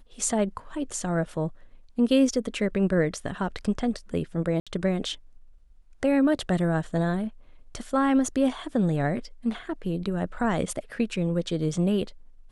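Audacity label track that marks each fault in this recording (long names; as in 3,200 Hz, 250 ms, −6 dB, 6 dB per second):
4.600000	4.670000	drop-out 66 ms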